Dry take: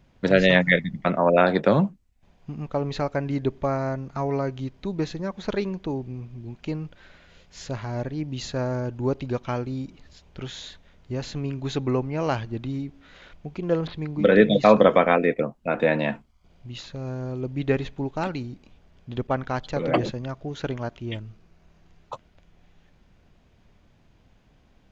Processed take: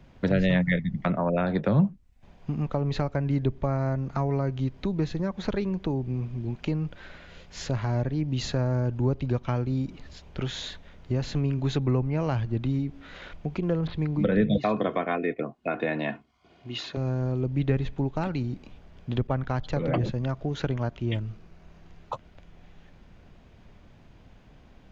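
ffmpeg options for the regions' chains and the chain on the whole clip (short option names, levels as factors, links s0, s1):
-filter_complex "[0:a]asettb=1/sr,asplit=3[s0][s1][s2];[s0]atrim=end=14.574[s3];[s1]atrim=start=14.57:end=16.97,asetpts=PTS-STARTPTS,afade=t=in:d=0.004:c=qsin,afade=t=out:st=2.396:d=0.004:c=qsin,highpass=170,lowpass=3900,aemphasis=mode=production:type=50fm,aecho=1:1:2.8:0.48,atrim=end_sample=105840[s4];[s2]atrim=start=16.966[s5];[s3][s4]acrossfade=d=0.004:c1=hsin:c2=qsin[s6];[s6][s5]acrossfade=d=0.004:c1=qsin:c2=hsin,highshelf=f=5100:g=-7,acrossover=split=160[s7][s8];[s8]acompressor=threshold=0.0158:ratio=3[s9];[s7][s9]amix=inputs=2:normalize=0,volume=2"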